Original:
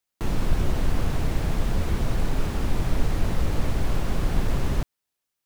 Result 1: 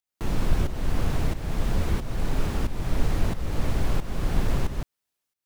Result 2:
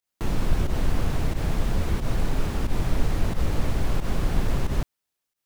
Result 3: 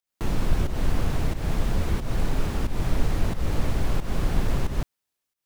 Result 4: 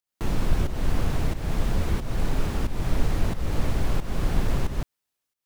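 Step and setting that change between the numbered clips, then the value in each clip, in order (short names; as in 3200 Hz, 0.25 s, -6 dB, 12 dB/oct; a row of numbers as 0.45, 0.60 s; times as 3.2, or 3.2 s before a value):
pump, release: 522, 92, 229, 336 ms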